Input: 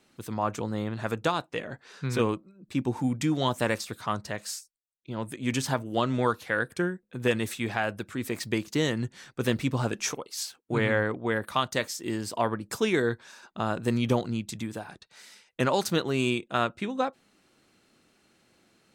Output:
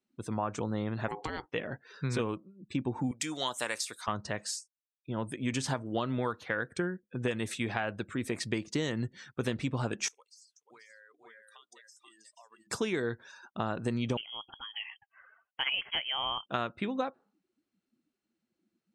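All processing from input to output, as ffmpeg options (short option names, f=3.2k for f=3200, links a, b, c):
-filter_complex "[0:a]asettb=1/sr,asplit=3[a][b][c];[a]atrim=end=1.084[d];[b]atrim=start=1.08:end=1.48,asetpts=PTS-STARTPTS,afade=t=in:d=0.004:c=qsin,afade=t=out:st=0.396:d=0.004:c=qsin,equalizer=f=240:w=2:g=9,acompressor=threshold=-29dB:ratio=6:attack=3.2:release=140:knee=1:detection=peak,aeval=exprs='val(0)*sin(2*PI*620*n/s)':c=same[e];[c]atrim=start=1.476[f];[d][e]acrossfade=d=0.004:c1=hsin:c2=qsin[g];[g][f]acrossfade=d=0.004:c1=qsin:c2=hsin,asettb=1/sr,asplit=3[h][i][j];[h]atrim=end=3.114[k];[i]atrim=start=3.11:end=4.08,asetpts=PTS-STARTPTS,afade=t=in:d=0.004:c=qsin,afade=t=out:st=0.966:d=0.004:c=qsin,highpass=f=1.1k:p=1,highshelf=f=7.5k:g=11.5[l];[j]atrim=start=4.076[m];[k][l]acrossfade=d=0.004:c1=hsin:c2=qsin[n];[n][m]acrossfade=d=0.004:c1=qsin:c2=hsin,asettb=1/sr,asplit=3[o][p][q];[o]atrim=end=10.084[r];[p]atrim=start=10.08:end=12.67,asetpts=PTS-STARTPTS,afade=t=in:d=0.004:c=qsin,afade=t=out:st=2.586:d=0.004:c=qsin,aderivative,acompressor=threshold=-49dB:ratio=8:attack=3.2:release=140:knee=1:detection=peak,aecho=1:1:484:0.668,atrim=end_sample=114219[s];[q]atrim=start=12.666[t];[r][s]acrossfade=d=0.004:c1=hsin:c2=qsin[u];[u][t]acrossfade=d=0.004:c1=qsin:c2=hsin,asettb=1/sr,asplit=3[v][w][x];[v]atrim=end=14.174[y];[w]atrim=start=14.17:end=16.46,asetpts=PTS-STARTPTS,afade=t=in:d=0.004:c=qsin,afade=t=out:st=2.286:d=0.004:c=qsin,highpass=460,lowpass=f=3k:t=q:w=0.5098,lowpass=f=3k:t=q:w=0.6013,lowpass=f=3k:t=q:w=0.9,lowpass=f=3k:t=q:w=2.563,afreqshift=-3500[z];[x]atrim=start=16.456[aa];[y][z]acrossfade=d=0.004:c1=hsin:c2=qsin[ab];[ab][aa]acrossfade=d=0.004:c1=qsin:c2=hsin,afftdn=nr=25:nf=-51,lowpass=f=10k:w=0.5412,lowpass=f=10k:w=1.3066,acompressor=threshold=-28dB:ratio=6"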